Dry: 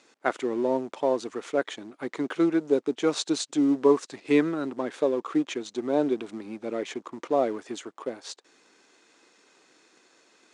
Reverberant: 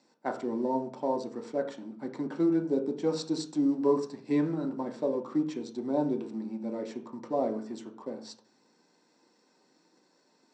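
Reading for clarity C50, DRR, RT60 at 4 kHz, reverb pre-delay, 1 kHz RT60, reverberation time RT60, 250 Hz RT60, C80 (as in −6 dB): 10.5 dB, 2.0 dB, 0.40 s, 3 ms, 0.45 s, 0.40 s, 0.70 s, 14.5 dB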